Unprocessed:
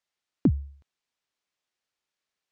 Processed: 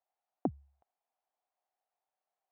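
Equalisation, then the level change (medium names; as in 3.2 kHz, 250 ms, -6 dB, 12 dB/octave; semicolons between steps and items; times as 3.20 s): band-pass filter 740 Hz, Q 6.4; +12.0 dB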